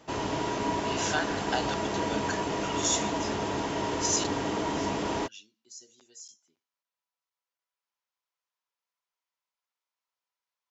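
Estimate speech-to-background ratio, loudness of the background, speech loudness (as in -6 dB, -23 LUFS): -1.5 dB, -31.0 LUFS, -32.5 LUFS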